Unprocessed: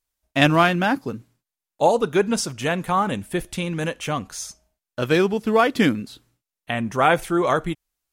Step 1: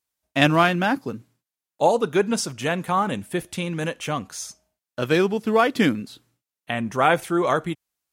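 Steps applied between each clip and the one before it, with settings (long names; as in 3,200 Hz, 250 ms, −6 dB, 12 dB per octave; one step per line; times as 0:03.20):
high-pass filter 92 Hz 12 dB per octave
level −1 dB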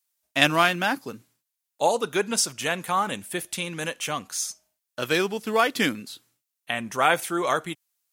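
spectral tilt +2.5 dB per octave
level −2 dB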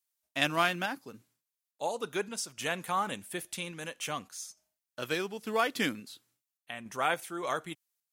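sample-and-hold tremolo
level −6.5 dB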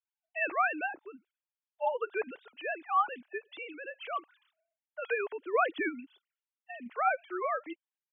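three sine waves on the formant tracks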